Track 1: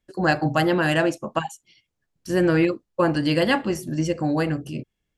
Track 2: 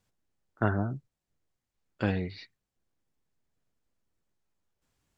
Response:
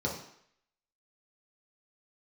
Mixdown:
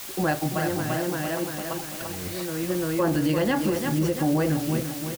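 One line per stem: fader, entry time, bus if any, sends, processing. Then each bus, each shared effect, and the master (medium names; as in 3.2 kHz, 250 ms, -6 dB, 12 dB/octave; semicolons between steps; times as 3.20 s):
+2.0 dB, 0.00 s, no send, echo send -10 dB, treble shelf 2.3 kHz -10.5 dB; hard clipper -13 dBFS, distortion -26 dB; auto duck -16 dB, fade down 1.15 s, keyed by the second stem
-1.5 dB, 0.00 s, no send, no echo send, compressor with a negative ratio -36 dBFS, ratio -1; word length cut 6-bit, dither triangular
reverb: none
echo: feedback delay 342 ms, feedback 53%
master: peak limiter -15 dBFS, peak gain reduction 6.5 dB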